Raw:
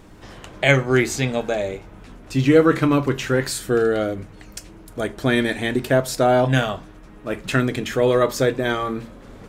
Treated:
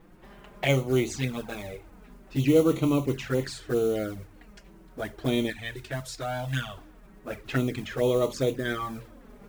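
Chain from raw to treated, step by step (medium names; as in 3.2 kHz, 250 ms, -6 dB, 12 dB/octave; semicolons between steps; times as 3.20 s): level-controlled noise filter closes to 2.4 kHz, open at -13 dBFS; 5.50–6.77 s: peaking EQ 460 Hz -11.5 dB 2.5 oct; modulation noise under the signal 21 dB; touch-sensitive flanger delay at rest 6.4 ms, full sweep at -15 dBFS; trim -5.5 dB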